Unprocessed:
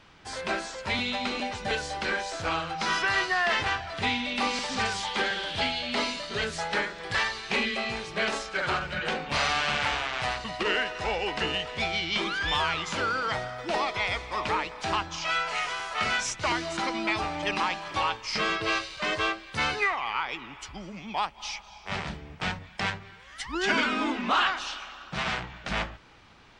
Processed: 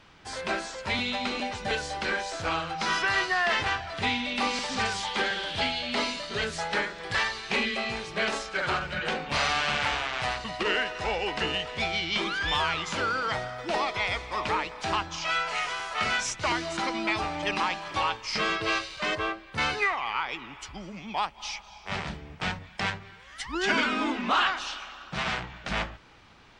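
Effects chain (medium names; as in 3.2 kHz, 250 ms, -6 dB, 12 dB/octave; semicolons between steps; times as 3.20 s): 19.15–19.58 s: peaking EQ 6.8 kHz -10.5 dB 2.7 oct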